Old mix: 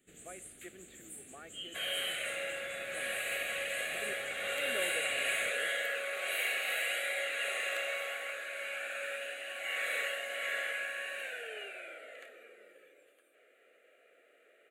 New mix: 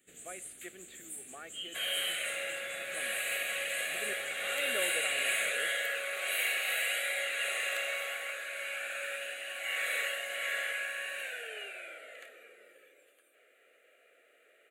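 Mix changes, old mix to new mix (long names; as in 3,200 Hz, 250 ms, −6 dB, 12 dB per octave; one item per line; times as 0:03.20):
speech +3.5 dB
master: add spectral tilt +1.5 dB per octave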